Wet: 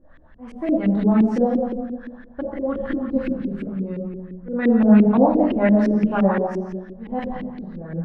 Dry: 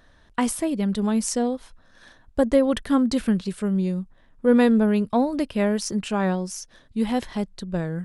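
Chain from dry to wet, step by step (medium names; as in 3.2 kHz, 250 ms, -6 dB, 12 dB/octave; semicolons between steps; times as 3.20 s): slow attack 354 ms; simulated room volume 650 m³, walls mixed, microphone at 2.3 m; LFO low-pass saw up 5.8 Hz 310–2500 Hz; trim -3 dB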